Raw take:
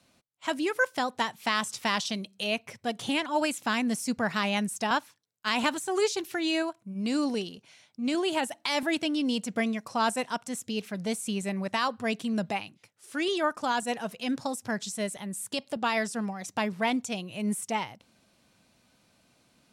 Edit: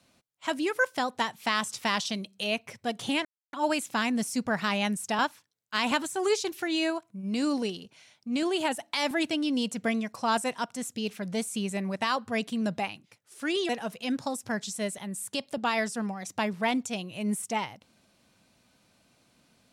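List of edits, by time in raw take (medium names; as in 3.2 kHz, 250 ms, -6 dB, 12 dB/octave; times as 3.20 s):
3.25 s: insert silence 0.28 s
13.41–13.88 s: delete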